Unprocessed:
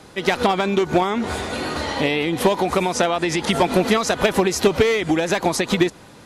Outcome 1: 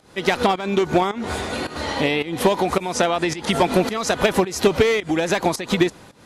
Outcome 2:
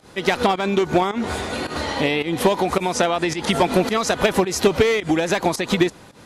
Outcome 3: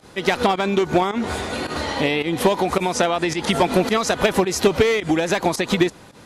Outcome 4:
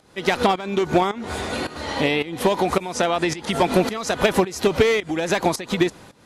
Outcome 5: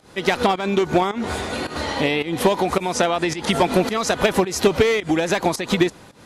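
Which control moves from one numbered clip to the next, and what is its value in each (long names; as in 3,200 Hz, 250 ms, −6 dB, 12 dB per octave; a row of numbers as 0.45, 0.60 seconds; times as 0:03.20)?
fake sidechain pumping, release: 262, 114, 76, 475, 173 milliseconds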